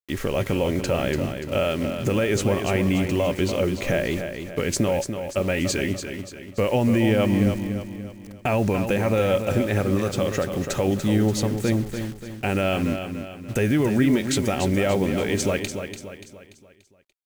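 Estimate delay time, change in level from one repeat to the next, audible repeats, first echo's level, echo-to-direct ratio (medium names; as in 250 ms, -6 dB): 290 ms, -7.0 dB, 4, -8.0 dB, -7.0 dB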